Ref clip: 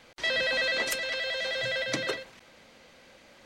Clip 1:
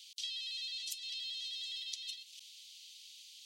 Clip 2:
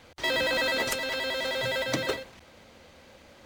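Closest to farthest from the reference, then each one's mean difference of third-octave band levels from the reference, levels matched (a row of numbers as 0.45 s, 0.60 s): 2, 1; 3.5 dB, 19.0 dB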